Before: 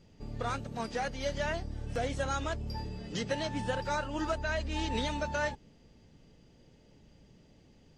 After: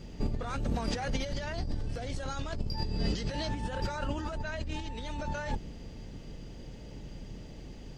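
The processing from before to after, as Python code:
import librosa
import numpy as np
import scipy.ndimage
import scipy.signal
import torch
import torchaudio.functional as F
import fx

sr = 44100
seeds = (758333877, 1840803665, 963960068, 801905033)

y = fx.octave_divider(x, sr, octaves=2, level_db=3.0)
y = fx.over_compress(y, sr, threshold_db=-39.0, ratio=-1.0)
y = fx.peak_eq(y, sr, hz=4600.0, db=8.0, octaves=0.39, at=(1.33, 3.49))
y = y * librosa.db_to_amplitude(5.5)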